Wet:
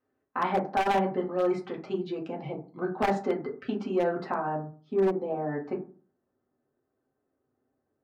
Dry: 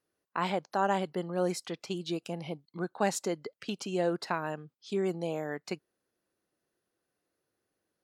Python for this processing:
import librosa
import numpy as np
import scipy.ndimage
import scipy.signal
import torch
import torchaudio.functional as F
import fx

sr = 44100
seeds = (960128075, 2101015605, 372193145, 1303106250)

y = fx.lowpass(x, sr, hz=fx.steps((0.0, 2000.0), (4.3, 1100.0)), slope=12)
y = fx.rev_fdn(y, sr, rt60_s=0.39, lf_ratio=1.3, hf_ratio=0.4, size_ms=23.0, drr_db=-3.0)
y = 10.0 ** (-17.0 / 20.0) * (np.abs((y / 10.0 ** (-17.0 / 20.0) + 3.0) % 4.0 - 2.0) - 1.0)
y = fx.transformer_sat(y, sr, knee_hz=190.0)